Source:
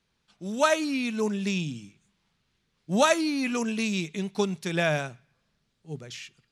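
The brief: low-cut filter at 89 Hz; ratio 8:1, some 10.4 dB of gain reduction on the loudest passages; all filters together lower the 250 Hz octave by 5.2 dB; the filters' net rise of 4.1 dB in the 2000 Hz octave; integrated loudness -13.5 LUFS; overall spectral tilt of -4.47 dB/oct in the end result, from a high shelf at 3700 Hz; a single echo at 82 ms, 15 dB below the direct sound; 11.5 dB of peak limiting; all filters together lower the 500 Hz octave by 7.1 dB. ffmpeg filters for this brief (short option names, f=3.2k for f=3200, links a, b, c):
-af "highpass=89,equalizer=f=250:t=o:g=-4.5,equalizer=f=500:t=o:g=-9,equalizer=f=2k:t=o:g=7.5,highshelf=f=3.7k:g=-5,acompressor=threshold=-28dB:ratio=8,alimiter=level_in=4.5dB:limit=-24dB:level=0:latency=1,volume=-4.5dB,aecho=1:1:82:0.178,volume=24.5dB"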